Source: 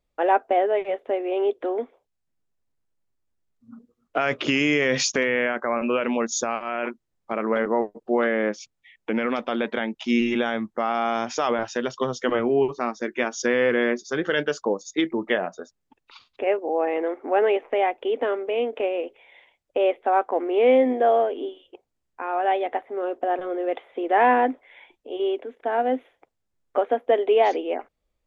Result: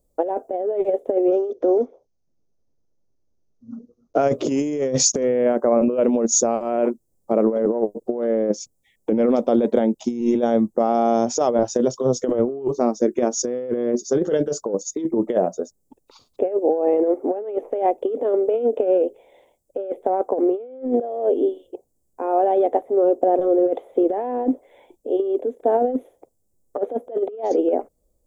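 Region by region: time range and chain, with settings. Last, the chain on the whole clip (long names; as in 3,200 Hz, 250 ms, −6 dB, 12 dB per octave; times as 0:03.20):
0:01.32–0:04.23: one scale factor per block 7 bits + Chebyshev low-pass filter 6,300 Hz, order 6 + parametric band 1,400 Hz +4.5 dB 0.24 octaves
whole clip: drawn EQ curve 130 Hz 0 dB, 540 Hz +3 dB, 1,600 Hz −20 dB, 2,800 Hz −21 dB, 8,000 Hz +6 dB; compressor whose output falls as the input rises −24 dBFS, ratio −0.5; level +5.5 dB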